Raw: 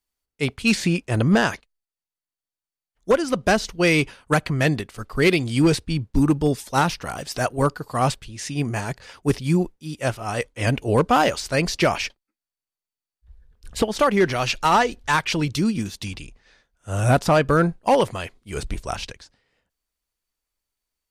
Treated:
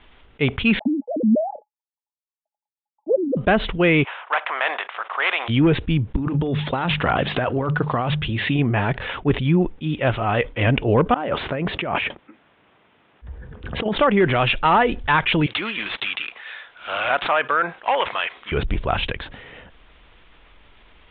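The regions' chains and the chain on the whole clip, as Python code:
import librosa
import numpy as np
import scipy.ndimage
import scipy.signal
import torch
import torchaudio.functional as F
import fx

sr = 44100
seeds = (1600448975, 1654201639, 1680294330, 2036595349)

y = fx.chain(x, sr, fx.sine_speech(),
    fx.cheby_ripple(hz=870.0, ripple_db=9), at=(0.79, 3.37))
y = fx.spec_flatten(y, sr, power=0.64, at=(4.03, 5.48), fade=0.02)
y = fx.highpass(y, sr, hz=740.0, slope=24, at=(4.03, 5.48), fade=0.02)
y = fx.spacing_loss(y, sr, db_at_10k=34, at=(4.03, 5.48), fade=0.02)
y = fx.chain(y, sr, fx.highpass(hz=56.0, slope=12),
    fx.hum_notches(base_hz=50, count=4),
    fx.over_compress(threshold_db=-28.0, ratio=-1.0), at=(6.16, 8.59))
y = fx.chain(y, sr, fx.highpass(hz=120.0, slope=12),
    fx.over_compress(threshold_db=-30.0, ratio=-1.0),
    fx.spacing_loss(db_at_10k=30), at=(11.14, 13.96))
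y = fx.chain(y, sr, fx.highpass(hz=1000.0, slope=12),
    fx.resample_bad(factor=4, down='none', up='zero_stuff'), at=(15.46, 18.52))
y = fx.env_lowpass_down(y, sr, base_hz=2800.0, full_db=-13.0)
y = scipy.signal.sosfilt(scipy.signal.butter(16, 3600.0, 'lowpass', fs=sr, output='sos'), y)
y = fx.env_flatten(y, sr, amount_pct=50)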